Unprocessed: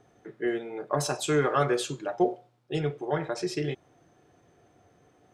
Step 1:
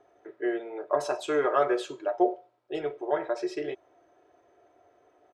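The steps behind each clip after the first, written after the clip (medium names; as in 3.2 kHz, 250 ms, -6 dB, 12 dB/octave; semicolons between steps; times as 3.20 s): low-pass 1.8 kHz 6 dB/octave; resonant low shelf 310 Hz -13 dB, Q 1.5; comb 3.1 ms, depth 42%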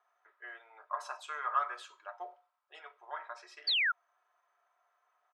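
ladder high-pass 980 Hz, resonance 55%; painted sound fall, 3.67–3.92 s, 1.3–4.8 kHz -29 dBFS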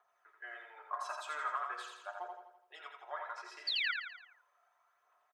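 compression, threshold -34 dBFS, peak gain reduction 9 dB; phaser 0.39 Hz, delay 3.6 ms, feedback 43%; on a send: feedback delay 84 ms, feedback 50%, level -4.5 dB; on the sum: trim -1 dB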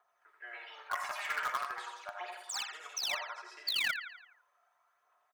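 in parallel at -9 dB: bit crusher 5-bit; on the sum: ever faster or slower copies 216 ms, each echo +5 st, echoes 2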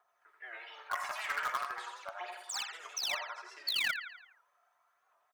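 warped record 78 rpm, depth 100 cents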